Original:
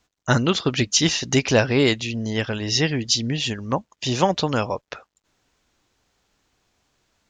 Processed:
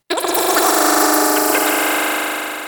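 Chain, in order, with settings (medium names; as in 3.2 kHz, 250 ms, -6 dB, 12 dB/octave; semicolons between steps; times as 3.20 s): echo with a slow build-up 108 ms, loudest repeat 8, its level -5 dB; wide varispeed 2.73×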